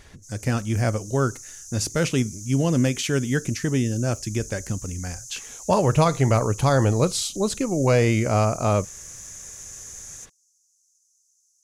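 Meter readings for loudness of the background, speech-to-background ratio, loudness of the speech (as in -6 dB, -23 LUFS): -38.0 LUFS, 15.0 dB, -23.0 LUFS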